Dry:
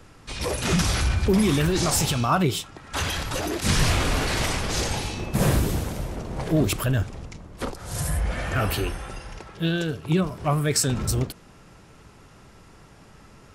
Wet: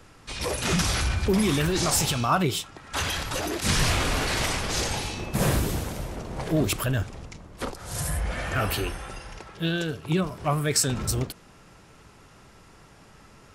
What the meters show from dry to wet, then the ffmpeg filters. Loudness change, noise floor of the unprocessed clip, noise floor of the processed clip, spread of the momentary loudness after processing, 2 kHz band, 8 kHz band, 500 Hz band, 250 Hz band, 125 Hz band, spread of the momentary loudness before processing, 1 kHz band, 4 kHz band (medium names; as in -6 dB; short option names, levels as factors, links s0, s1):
-1.5 dB, -50 dBFS, -52 dBFS, 13 LU, 0.0 dB, 0.0 dB, -2.0 dB, -3.0 dB, -3.5 dB, 12 LU, -0.5 dB, 0.0 dB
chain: -af "lowshelf=f=480:g=-3.5"